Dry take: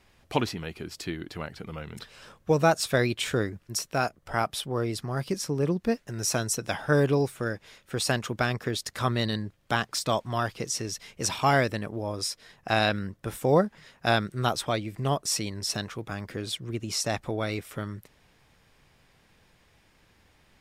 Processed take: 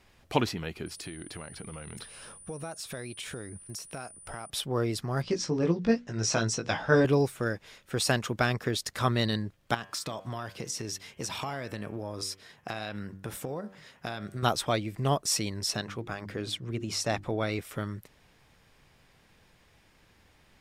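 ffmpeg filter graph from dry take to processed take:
ffmpeg -i in.wav -filter_complex "[0:a]asettb=1/sr,asplit=3[link_01][link_02][link_03];[link_01]atrim=end=0.864[link_04];[link_02]atrim=start=0.86:end=4.5,asetpts=PTS-STARTPTS,afade=type=in:duration=0.004:curve=qsin,afade=type=out:start_time=3.636:duration=0.004:curve=qsin,acompressor=threshold=-37dB:ratio=5:attack=3.2:release=140:knee=1:detection=peak,aeval=exprs='val(0)+0.00398*sin(2*PI*9400*n/s)':channel_layout=same[link_05];[link_03]atrim=start=4.496[link_06];[link_04][link_05]acrossfade=duration=0.004:curve1=hsin:curve2=qsin[link_07];[link_07][link_06]acrossfade=duration=0.004:curve1=qsin:curve2=hsin,asettb=1/sr,asplit=3[link_08][link_09][link_10];[link_08]atrim=end=5.224[link_11];[link_09]atrim=start=5.22:end=7.05,asetpts=PTS-STARTPTS,afade=type=in:duration=0.004:curve=qsin,afade=type=out:start_time=1.826:duration=0.004:curve=qsin,lowpass=frequency=6600:width=0.5412,lowpass=frequency=6600:width=1.3066,bandreject=frequency=60:width_type=h:width=6,bandreject=frequency=120:width_type=h:width=6,bandreject=frequency=180:width_type=h:width=6,bandreject=frequency=240:width_type=h:width=6,bandreject=frequency=300:width_type=h:width=6,bandreject=frequency=360:width_type=h:width=6,bandreject=frequency=420:width_type=h:width=6,bandreject=frequency=480:width_type=h:width=6,asplit=2[link_12][link_13];[link_13]adelay=18,volume=-5dB[link_14];[link_12][link_14]amix=inputs=2:normalize=0,atrim=end_sample=80703[link_15];[link_10]atrim=start=7.046[link_16];[link_11][link_15]acrossfade=duration=0.004:curve1=hsin:curve2=qsin[link_17];[link_17][link_16]acrossfade=duration=0.004:curve1=qsin:curve2=hsin,asettb=1/sr,asplit=3[link_18][link_19][link_20];[link_18]atrim=end=9.744[link_21];[link_19]atrim=start=9.74:end=14.43,asetpts=PTS-STARTPTS,afade=type=in:duration=0.004:curve=qsin,afade=type=out:start_time=4.686:duration=0.004:curve=qsin,highpass=59,acompressor=threshold=-30dB:ratio=12:attack=3.2:release=140:knee=1:detection=peak,bandreject=frequency=95.98:width_type=h:width=4,bandreject=frequency=191.96:width_type=h:width=4,bandreject=frequency=287.94:width_type=h:width=4,bandreject=frequency=383.92:width_type=h:width=4,bandreject=frequency=479.9:width_type=h:width=4,bandreject=frequency=575.88:width_type=h:width=4,bandreject=frequency=671.86:width_type=h:width=4,bandreject=frequency=767.84:width_type=h:width=4,bandreject=frequency=863.82:width_type=h:width=4,bandreject=frequency=959.8:width_type=h:width=4,bandreject=frequency=1055.78:width_type=h:width=4,bandreject=frequency=1151.76:width_type=h:width=4,bandreject=frequency=1247.74:width_type=h:width=4,bandreject=frequency=1343.72:width_type=h:width=4,bandreject=frequency=1439.7:width_type=h:width=4,bandreject=frequency=1535.68:width_type=h:width=4,bandreject=frequency=1631.66:width_type=h:width=4,bandreject=frequency=1727.64:width_type=h:width=4,bandreject=frequency=1823.62:width_type=h:width=4,bandreject=frequency=1919.6:width_type=h:width=4,bandreject=frequency=2015.58:width_type=h:width=4,bandreject=frequency=2111.56:width_type=h:width=4,bandreject=frequency=2207.54:width_type=h:width=4,bandreject=frequency=2303.52:width_type=h:width=4,bandreject=frequency=2399.5:width_type=h:width=4,bandreject=frequency=2495.48:width_type=h:width=4,bandreject=frequency=2591.46:width_type=h:width=4,bandreject=frequency=2687.44:width_type=h:width=4,bandreject=frequency=2783.42:width_type=h:width=4,bandreject=frequency=2879.4:width_type=h:width=4,bandreject=frequency=2975.38:width_type=h:width=4,bandreject=frequency=3071.36:width_type=h:width=4,bandreject=frequency=3167.34:width_type=h:width=4,bandreject=frequency=3263.32:width_type=h:width=4,bandreject=frequency=3359.3:width_type=h:width=4[link_22];[link_20]atrim=start=14.426[link_23];[link_21][link_22]acrossfade=duration=0.004:curve1=hsin:curve2=qsin[link_24];[link_24][link_23]acrossfade=duration=0.004:curve1=qsin:curve2=hsin,asettb=1/sr,asplit=3[link_25][link_26][link_27];[link_25]atrim=end=15.704[link_28];[link_26]atrim=start=15.7:end=17.59,asetpts=PTS-STARTPTS,afade=type=in:duration=0.004:curve=qsin,afade=type=out:start_time=1.886:duration=0.004:curve=qsin,highshelf=frequency=6900:gain=-7.5,bandreject=frequency=50:width_type=h:width=6,bandreject=frequency=100:width_type=h:width=6,bandreject=frequency=150:width_type=h:width=6,bandreject=frequency=200:width_type=h:width=6,bandreject=frequency=250:width_type=h:width=6,bandreject=frequency=300:width_type=h:width=6,bandreject=frequency=350:width_type=h:width=6[link_29];[link_27]atrim=start=17.586[link_30];[link_28][link_29]acrossfade=duration=0.004:curve1=hsin:curve2=qsin[link_31];[link_31][link_30]acrossfade=duration=0.004:curve1=qsin:curve2=hsin" out.wav

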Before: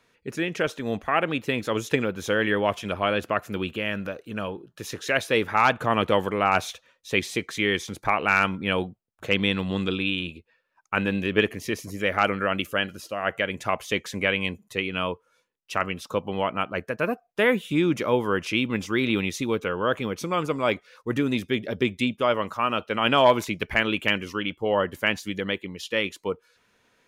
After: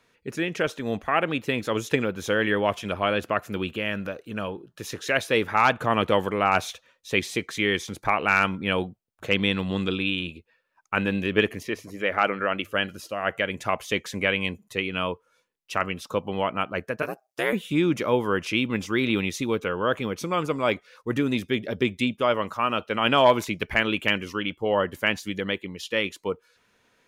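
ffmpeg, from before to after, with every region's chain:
ffmpeg -i in.wav -filter_complex "[0:a]asettb=1/sr,asplit=3[link_01][link_02][link_03];[link_01]atrim=end=11.634[link_04];[link_02]atrim=start=11.63:end=12.74,asetpts=PTS-STARTPTS,afade=type=in:duration=0.004:curve=qsin,afade=type=out:start_time=1.106:duration=0.004:curve=qsin,bass=frequency=250:gain=-6,treble=frequency=4000:gain=-9,bandreject=frequency=50:width_type=h:width=6,bandreject=frequency=100:width_type=h:width=6[link_05];[link_03]atrim=start=12.736[link_06];[link_04][link_05]acrossfade=duration=0.004:curve1=hsin:curve2=qsin[link_07];[link_07][link_06]acrossfade=duration=0.004:curve1=qsin:curve2=hsin,asettb=1/sr,asplit=3[link_08][link_09][link_10];[link_08]atrim=end=17.024[link_11];[link_09]atrim=start=17.02:end=17.53,asetpts=PTS-STARTPTS,afade=type=in:duration=0.004:curve=qsin,afade=type=out:start_time=0.506:duration=0.004:curve=qsin,highpass=frequency=450:poles=1,highshelf=frequency=4100:width_type=q:width=1.5:gain=6,aeval=exprs='val(0)*sin(2*PI*64*n/s)':channel_layout=same[link_12];[link_10]atrim=start=17.526[link_13];[link_11][link_12]acrossfade=duration=0.004:curve1=hsin:curve2=qsin[link_14];[link_14][link_13]acrossfade=duration=0.004:curve1=qsin:curve2=hsin" out.wav

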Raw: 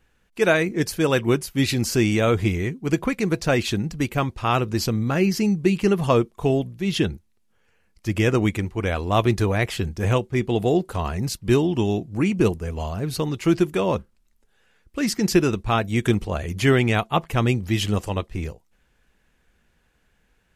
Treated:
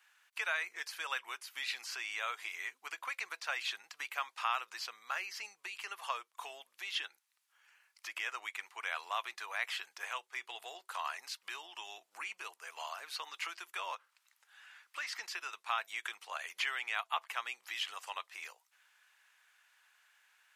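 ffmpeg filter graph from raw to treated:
ffmpeg -i in.wav -filter_complex "[0:a]asettb=1/sr,asplit=3[link_01][link_02][link_03];[link_01]atrim=end=13.954[link_04];[link_02]atrim=start=13.95:end=15.13,asetpts=PTS-STARTPTS,afade=type=in:duration=0.004:curve=qsin,afade=type=out:start_time=1.176:duration=0.004:curve=qsin,equalizer=frequency=1500:width=0.31:gain=6.5,acompressor=threshold=-31dB:ratio=6:attack=3.2:release=140:knee=1:detection=peak[link_05];[link_03]atrim=start=15.126[link_06];[link_04][link_05]acrossfade=duration=0.004:curve1=hsin:curve2=qsin[link_07];[link_07][link_06]acrossfade=duration=0.004:curve1=qsin:curve2=hsin,acompressor=threshold=-30dB:ratio=4,highpass=frequency=980:width=0.5412,highpass=frequency=980:width=1.3066,acrossover=split=4100[link_08][link_09];[link_09]acompressor=threshold=-52dB:ratio=4:attack=1:release=60[link_10];[link_08][link_10]amix=inputs=2:normalize=0,volume=2dB" out.wav

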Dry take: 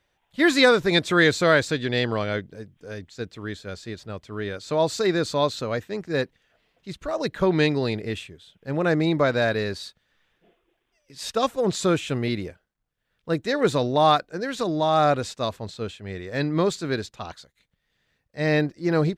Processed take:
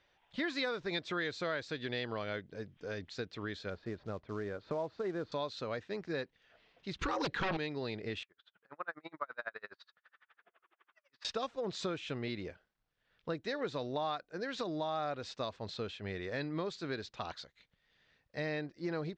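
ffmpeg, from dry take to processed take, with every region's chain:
ffmpeg -i in.wav -filter_complex "[0:a]asettb=1/sr,asplit=3[link_01][link_02][link_03];[link_01]atrim=end=3.704[link_04];[link_02]atrim=start=3.7:end=5.32,asetpts=PTS-STARTPTS,afade=type=in:duration=0.004:curve=qsin,afade=type=out:start_time=1.616:duration=0.004:curve=qsin,lowpass=1300,acrusher=bits=6:mode=log:mix=0:aa=0.000001[link_05];[link_03]atrim=start=5.316[link_06];[link_04][link_05]acrossfade=duration=0.004:curve1=hsin:curve2=qsin[link_07];[link_07][link_06]acrossfade=duration=0.004:curve1=qsin:curve2=hsin,asettb=1/sr,asplit=3[link_08][link_09][link_10];[link_08]atrim=end=6.994[link_11];[link_09]atrim=start=6.99:end=7.57,asetpts=PTS-STARTPTS,afade=type=in:duration=0.004:curve=qsin,afade=type=out:start_time=0.576:duration=0.004:curve=qsin,asuperstop=centerf=640:order=20:qfactor=4.2,aeval=exprs='0.299*sin(PI/2*3.98*val(0)/0.299)':channel_layout=same[link_12];[link_10]atrim=start=7.566[link_13];[link_11][link_12]acrossfade=duration=0.004:curve1=hsin:curve2=qsin[link_14];[link_14][link_13]acrossfade=duration=0.004:curve1=qsin:curve2=hsin,asettb=1/sr,asplit=3[link_15][link_16][link_17];[link_15]atrim=end=8.234[link_18];[link_16]atrim=start=8.23:end=11.25,asetpts=PTS-STARTPTS,afade=type=in:duration=0.004:curve=qsin,afade=type=out:start_time=3.016:duration=0.004:curve=qsin,acompressor=mode=upward:threshold=-37dB:ratio=2.5:attack=3.2:release=140:knee=2.83:detection=peak,bandpass=frequency=1300:width_type=q:width=2.6,aeval=exprs='val(0)*pow(10,-38*(0.5-0.5*cos(2*PI*12*n/s))/20)':channel_layout=same[link_19];[link_17]atrim=start=11.246[link_20];[link_18][link_19]acrossfade=duration=0.004:curve1=hsin:curve2=qsin[link_21];[link_21][link_20]acrossfade=duration=0.004:curve1=qsin:curve2=hsin,lowpass=frequency=5500:width=0.5412,lowpass=frequency=5500:width=1.3066,lowshelf=frequency=300:gain=-6,acompressor=threshold=-38dB:ratio=4,volume=1dB" out.wav

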